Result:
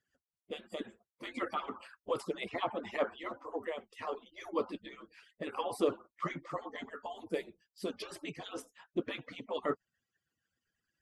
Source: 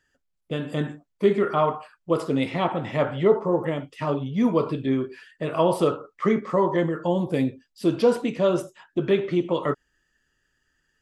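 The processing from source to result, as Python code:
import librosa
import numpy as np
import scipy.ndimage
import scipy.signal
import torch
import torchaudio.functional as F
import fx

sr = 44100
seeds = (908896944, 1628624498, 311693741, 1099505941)

y = fx.hpss_only(x, sr, part='percussive')
y = fx.band_squash(y, sr, depth_pct=70, at=(1.34, 3.0))
y = y * 10.0 ** (-7.5 / 20.0)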